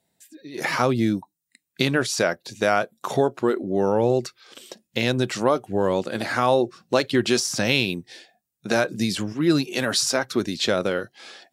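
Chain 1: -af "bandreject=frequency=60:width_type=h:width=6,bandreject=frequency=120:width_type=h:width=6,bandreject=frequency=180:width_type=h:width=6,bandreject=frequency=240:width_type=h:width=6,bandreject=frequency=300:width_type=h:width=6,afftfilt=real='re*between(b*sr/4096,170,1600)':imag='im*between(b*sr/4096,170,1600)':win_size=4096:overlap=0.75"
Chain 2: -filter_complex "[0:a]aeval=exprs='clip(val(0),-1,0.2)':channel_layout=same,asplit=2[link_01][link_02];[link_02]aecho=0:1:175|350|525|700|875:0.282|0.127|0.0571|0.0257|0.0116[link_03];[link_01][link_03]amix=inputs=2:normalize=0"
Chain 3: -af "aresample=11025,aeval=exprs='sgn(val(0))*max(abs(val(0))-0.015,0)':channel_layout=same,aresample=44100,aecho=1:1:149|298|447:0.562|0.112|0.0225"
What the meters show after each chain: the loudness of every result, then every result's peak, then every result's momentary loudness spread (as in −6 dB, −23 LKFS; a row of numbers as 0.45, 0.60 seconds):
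−24.5, −23.5, −23.5 LKFS; −6.5, −9.0, −4.5 dBFS; 9, 14, 8 LU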